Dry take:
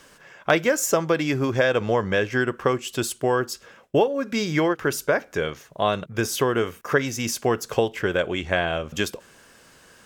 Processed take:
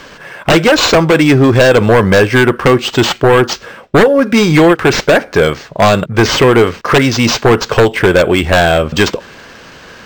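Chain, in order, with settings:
sine wavefolder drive 13 dB, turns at −3.5 dBFS
linearly interpolated sample-rate reduction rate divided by 4×
level +1 dB

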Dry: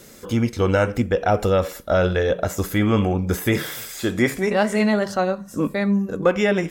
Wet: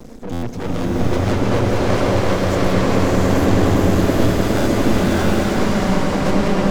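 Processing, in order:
spectral magnitudes quantised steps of 15 dB
spectral tilt −3.5 dB per octave
tube saturation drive 27 dB, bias 0.6
parametric band 5,700 Hz +5.5 dB 1.1 octaves
notch filter 430 Hz, Q 12
hollow resonant body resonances 250/440 Hz, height 9 dB
on a send: echo that builds up and dies away 102 ms, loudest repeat 5, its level −7 dB
on the sum: reverb reduction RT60 1.6 s
half-wave rectification
buffer that repeats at 0:00.32/0:04.56, samples 512, times 8
slow-attack reverb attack 760 ms, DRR −6 dB
level +7.5 dB

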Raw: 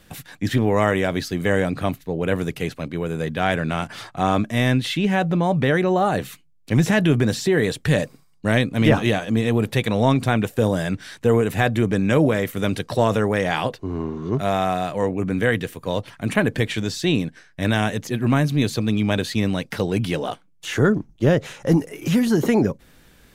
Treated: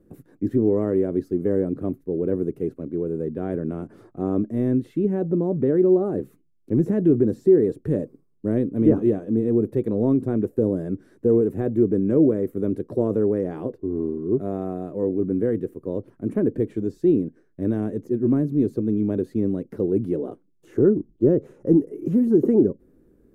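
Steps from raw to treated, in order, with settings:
drawn EQ curve 150 Hz 0 dB, 370 Hz +13 dB, 800 Hz −11 dB, 1,200 Hz −11 dB, 3,300 Hz −28 dB, 6,200 Hz −22 dB, 11,000 Hz −15 dB
level −7 dB

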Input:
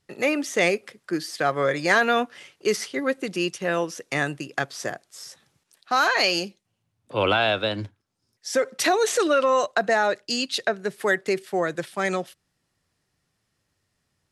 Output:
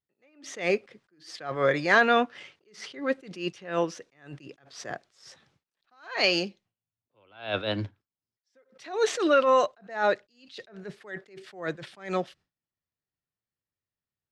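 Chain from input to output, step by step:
noise gate with hold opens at −52 dBFS
low-pass filter 4,500 Hz 12 dB per octave
level that may rise only so fast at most 140 dB per second

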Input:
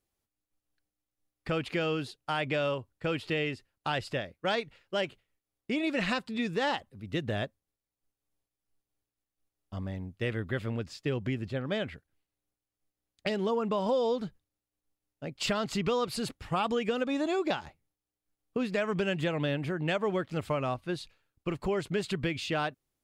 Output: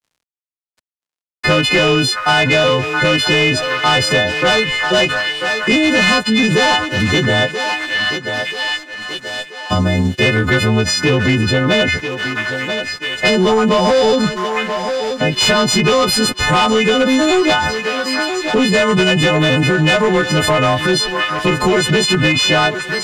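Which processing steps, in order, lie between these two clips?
every partial snapped to a pitch grid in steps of 3 semitones
in parallel at +2 dB: downward compressor, threshold −36 dBFS, peak gain reduction 14.5 dB
on the sum: gain into a clipping stage and back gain 23 dB
echo through a band-pass that steps 662 ms, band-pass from 1,400 Hz, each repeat 0.7 octaves, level −12 dB
dead-zone distortion −58.5 dBFS
high-frequency loss of the air 54 metres
on a send: feedback echo with a high-pass in the loop 983 ms, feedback 42%, high-pass 320 Hz, level −18 dB
on the sum: boost into a limiter +30.5 dB
multiband upward and downward compressor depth 40%
level −6.5 dB

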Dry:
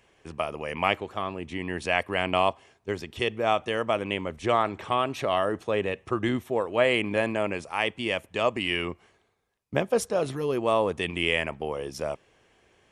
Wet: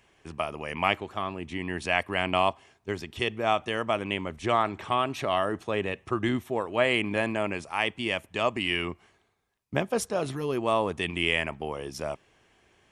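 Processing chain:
parametric band 500 Hz −5.5 dB 0.45 octaves

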